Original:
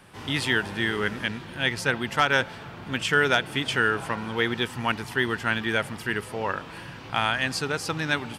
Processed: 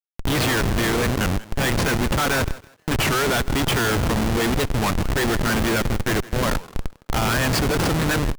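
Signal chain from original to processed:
comparator with hysteresis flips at −29.5 dBFS
feedback echo with a high-pass in the loop 162 ms, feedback 26%, high-pass 150 Hz, level −18.5 dB
wow of a warped record 33 1/3 rpm, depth 250 cents
level +7 dB

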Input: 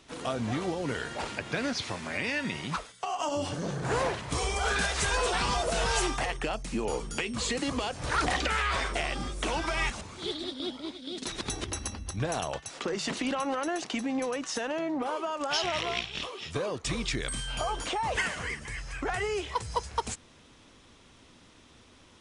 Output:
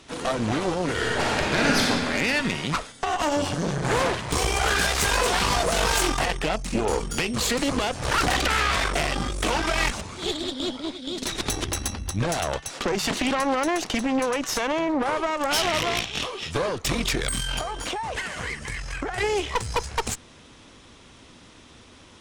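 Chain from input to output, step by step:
0:17.58–0:19.18: downward compressor 12 to 1, threshold −34 dBFS, peak gain reduction 10 dB
harmonic generator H 5 −12 dB, 6 −9 dB, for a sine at −15 dBFS
0:00.92–0:01.85: thrown reverb, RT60 2.2 s, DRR −4 dB

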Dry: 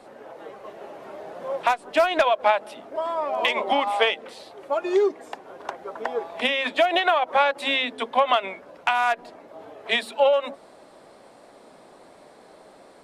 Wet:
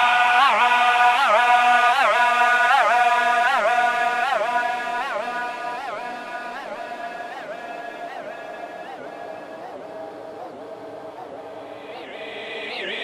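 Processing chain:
delay that plays each chunk backwards 157 ms, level −10.5 dB
extreme stretch with random phases 15×, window 0.50 s, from 0:08.92
wow of a warped record 78 rpm, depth 250 cents
level +6 dB

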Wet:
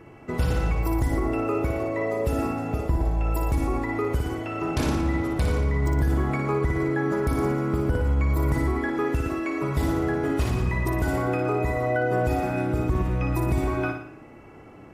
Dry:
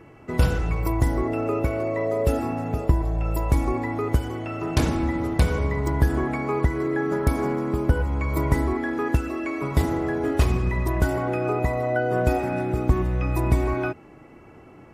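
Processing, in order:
flutter between parallel walls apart 10 metres, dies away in 0.59 s
brickwall limiter −15 dBFS, peak gain reduction 8 dB

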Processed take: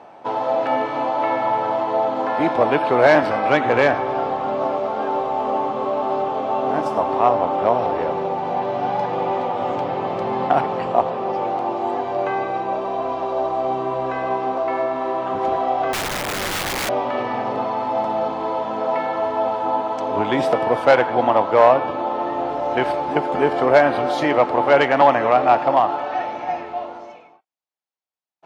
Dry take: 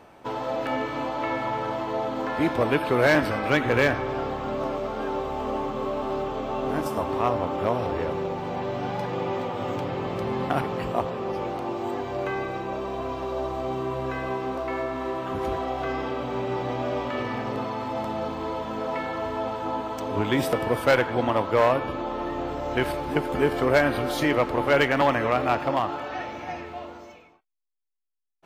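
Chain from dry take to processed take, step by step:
band-pass filter 140–5,900 Hz
parametric band 760 Hz +10 dB 0.96 octaves
0:15.93–0:16.89: wrap-around overflow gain 20.5 dB
level +1.5 dB

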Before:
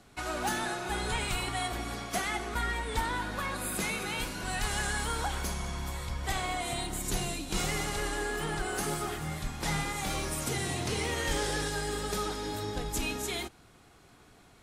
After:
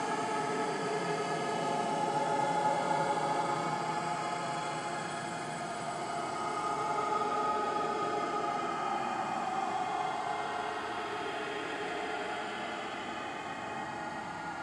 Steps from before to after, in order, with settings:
extreme stretch with random phases 43×, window 0.05 s, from 0:08.86
loudspeaker in its box 230–6,500 Hz, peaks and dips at 240 Hz +3 dB, 370 Hz −7 dB, 590 Hz +6 dB, 880 Hz +7 dB, 3,800 Hz −7 dB, 5,800 Hz −9 dB

